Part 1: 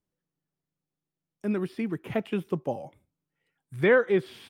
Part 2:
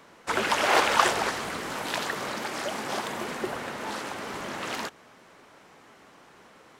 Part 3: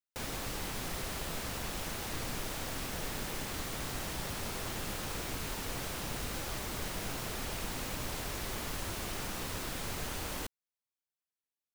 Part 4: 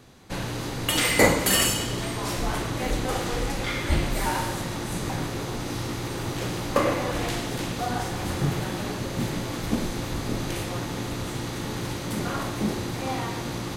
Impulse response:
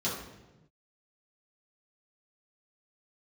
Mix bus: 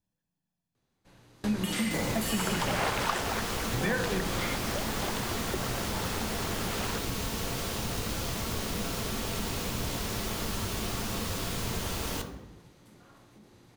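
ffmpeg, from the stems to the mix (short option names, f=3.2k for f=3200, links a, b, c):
-filter_complex "[0:a]aecho=1:1:1.2:0.65,volume=-2.5dB,asplit=3[a][b][c];[b]volume=-13dB[d];[1:a]adelay=2100,volume=-3dB[e];[2:a]adelay=1750,volume=2.5dB,asplit=2[f][g];[g]volume=-8.5dB[h];[3:a]acontrast=54,alimiter=limit=-13.5dB:level=0:latency=1:release=116,adelay=750,volume=-8dB[i];[c]apad=whole_len=640284[j];[i][j]sidechaingate=range=-25dB:threshold=-59dB:ratio=16:detection=peak[k];[4:a]atrim=start_sample=2205[l];[d][h]amix=inputs=2:normalize=0[m];[m][l]afir=irnorm=-1:irlink=0[n];[a][e][f][k][n]amix=inputs=5:normalize=0,acompressor=threshold=-28dB:ratio=2.5"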